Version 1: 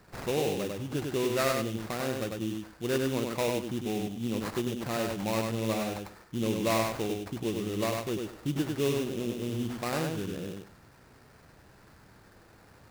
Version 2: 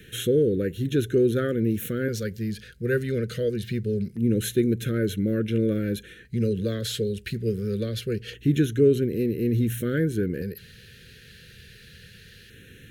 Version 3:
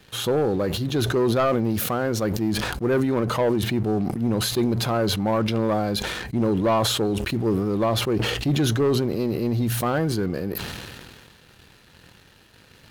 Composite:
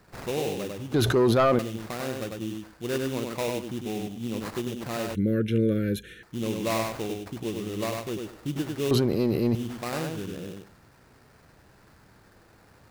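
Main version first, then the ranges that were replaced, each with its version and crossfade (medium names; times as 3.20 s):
1
0.94–1.59 s: from 3
5.15–6.23 s: from 2
8.91–9.55 s: from 3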